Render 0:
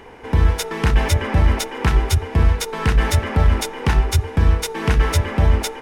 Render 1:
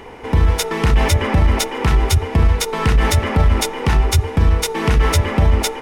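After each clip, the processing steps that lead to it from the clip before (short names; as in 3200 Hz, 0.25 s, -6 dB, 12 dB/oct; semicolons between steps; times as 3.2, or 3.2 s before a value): notch 1600 Hz, Q 11; limiter -10.5 dBFS, peak gain reduction 6.5 dB; gain +5 dB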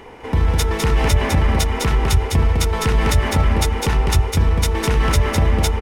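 echo 0.205 s -3.5 dB; gain -3 dB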